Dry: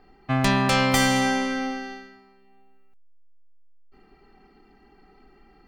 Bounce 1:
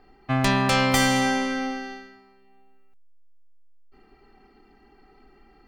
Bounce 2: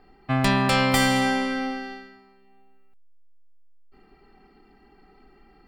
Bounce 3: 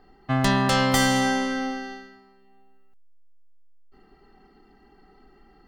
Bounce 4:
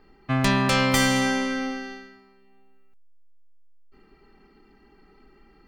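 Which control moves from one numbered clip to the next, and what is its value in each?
notch, frequency: 180, 6200, 2400, 740 Hz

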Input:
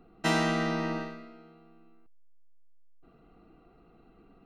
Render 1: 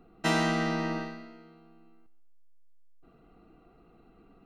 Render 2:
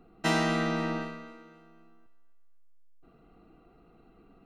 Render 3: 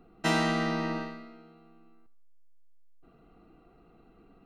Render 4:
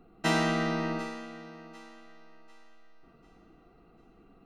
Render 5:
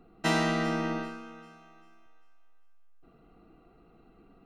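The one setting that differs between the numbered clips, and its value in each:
thinning echo, time: 134, 257, 78, 746, 394 ms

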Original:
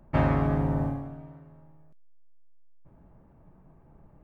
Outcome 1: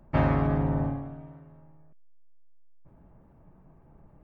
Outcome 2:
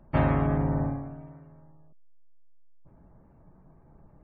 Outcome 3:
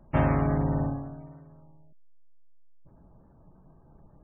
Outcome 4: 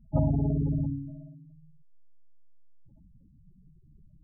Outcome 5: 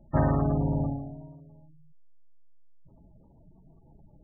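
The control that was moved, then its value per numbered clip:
spectral gate, under each frame's peak: -60, -45, -35, -10, -20 dB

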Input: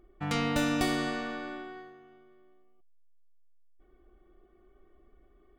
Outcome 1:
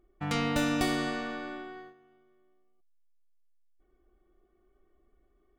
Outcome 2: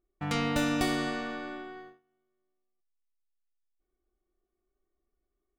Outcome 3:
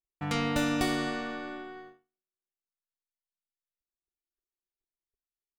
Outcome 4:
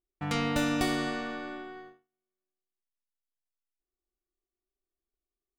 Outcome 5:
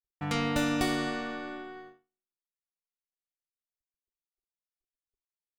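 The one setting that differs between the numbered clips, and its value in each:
gate, range: -7, -21, -47, -33, -59 dB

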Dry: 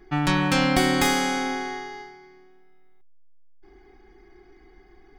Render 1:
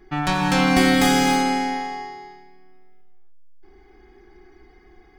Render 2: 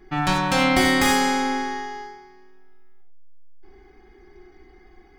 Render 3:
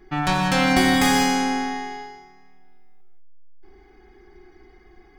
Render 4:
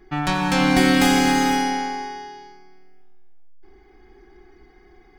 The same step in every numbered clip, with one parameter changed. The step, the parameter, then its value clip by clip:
non-linear reverb, gate: 0.34, 0.12, 0.22, 0.54 s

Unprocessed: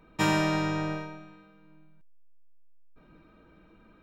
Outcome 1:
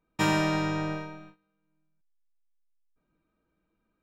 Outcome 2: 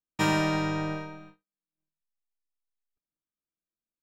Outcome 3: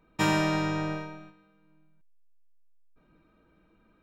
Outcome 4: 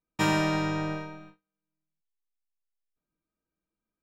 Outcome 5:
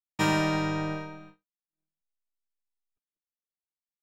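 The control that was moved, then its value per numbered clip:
gate, range: -20, -46, -7, -33, -59 dB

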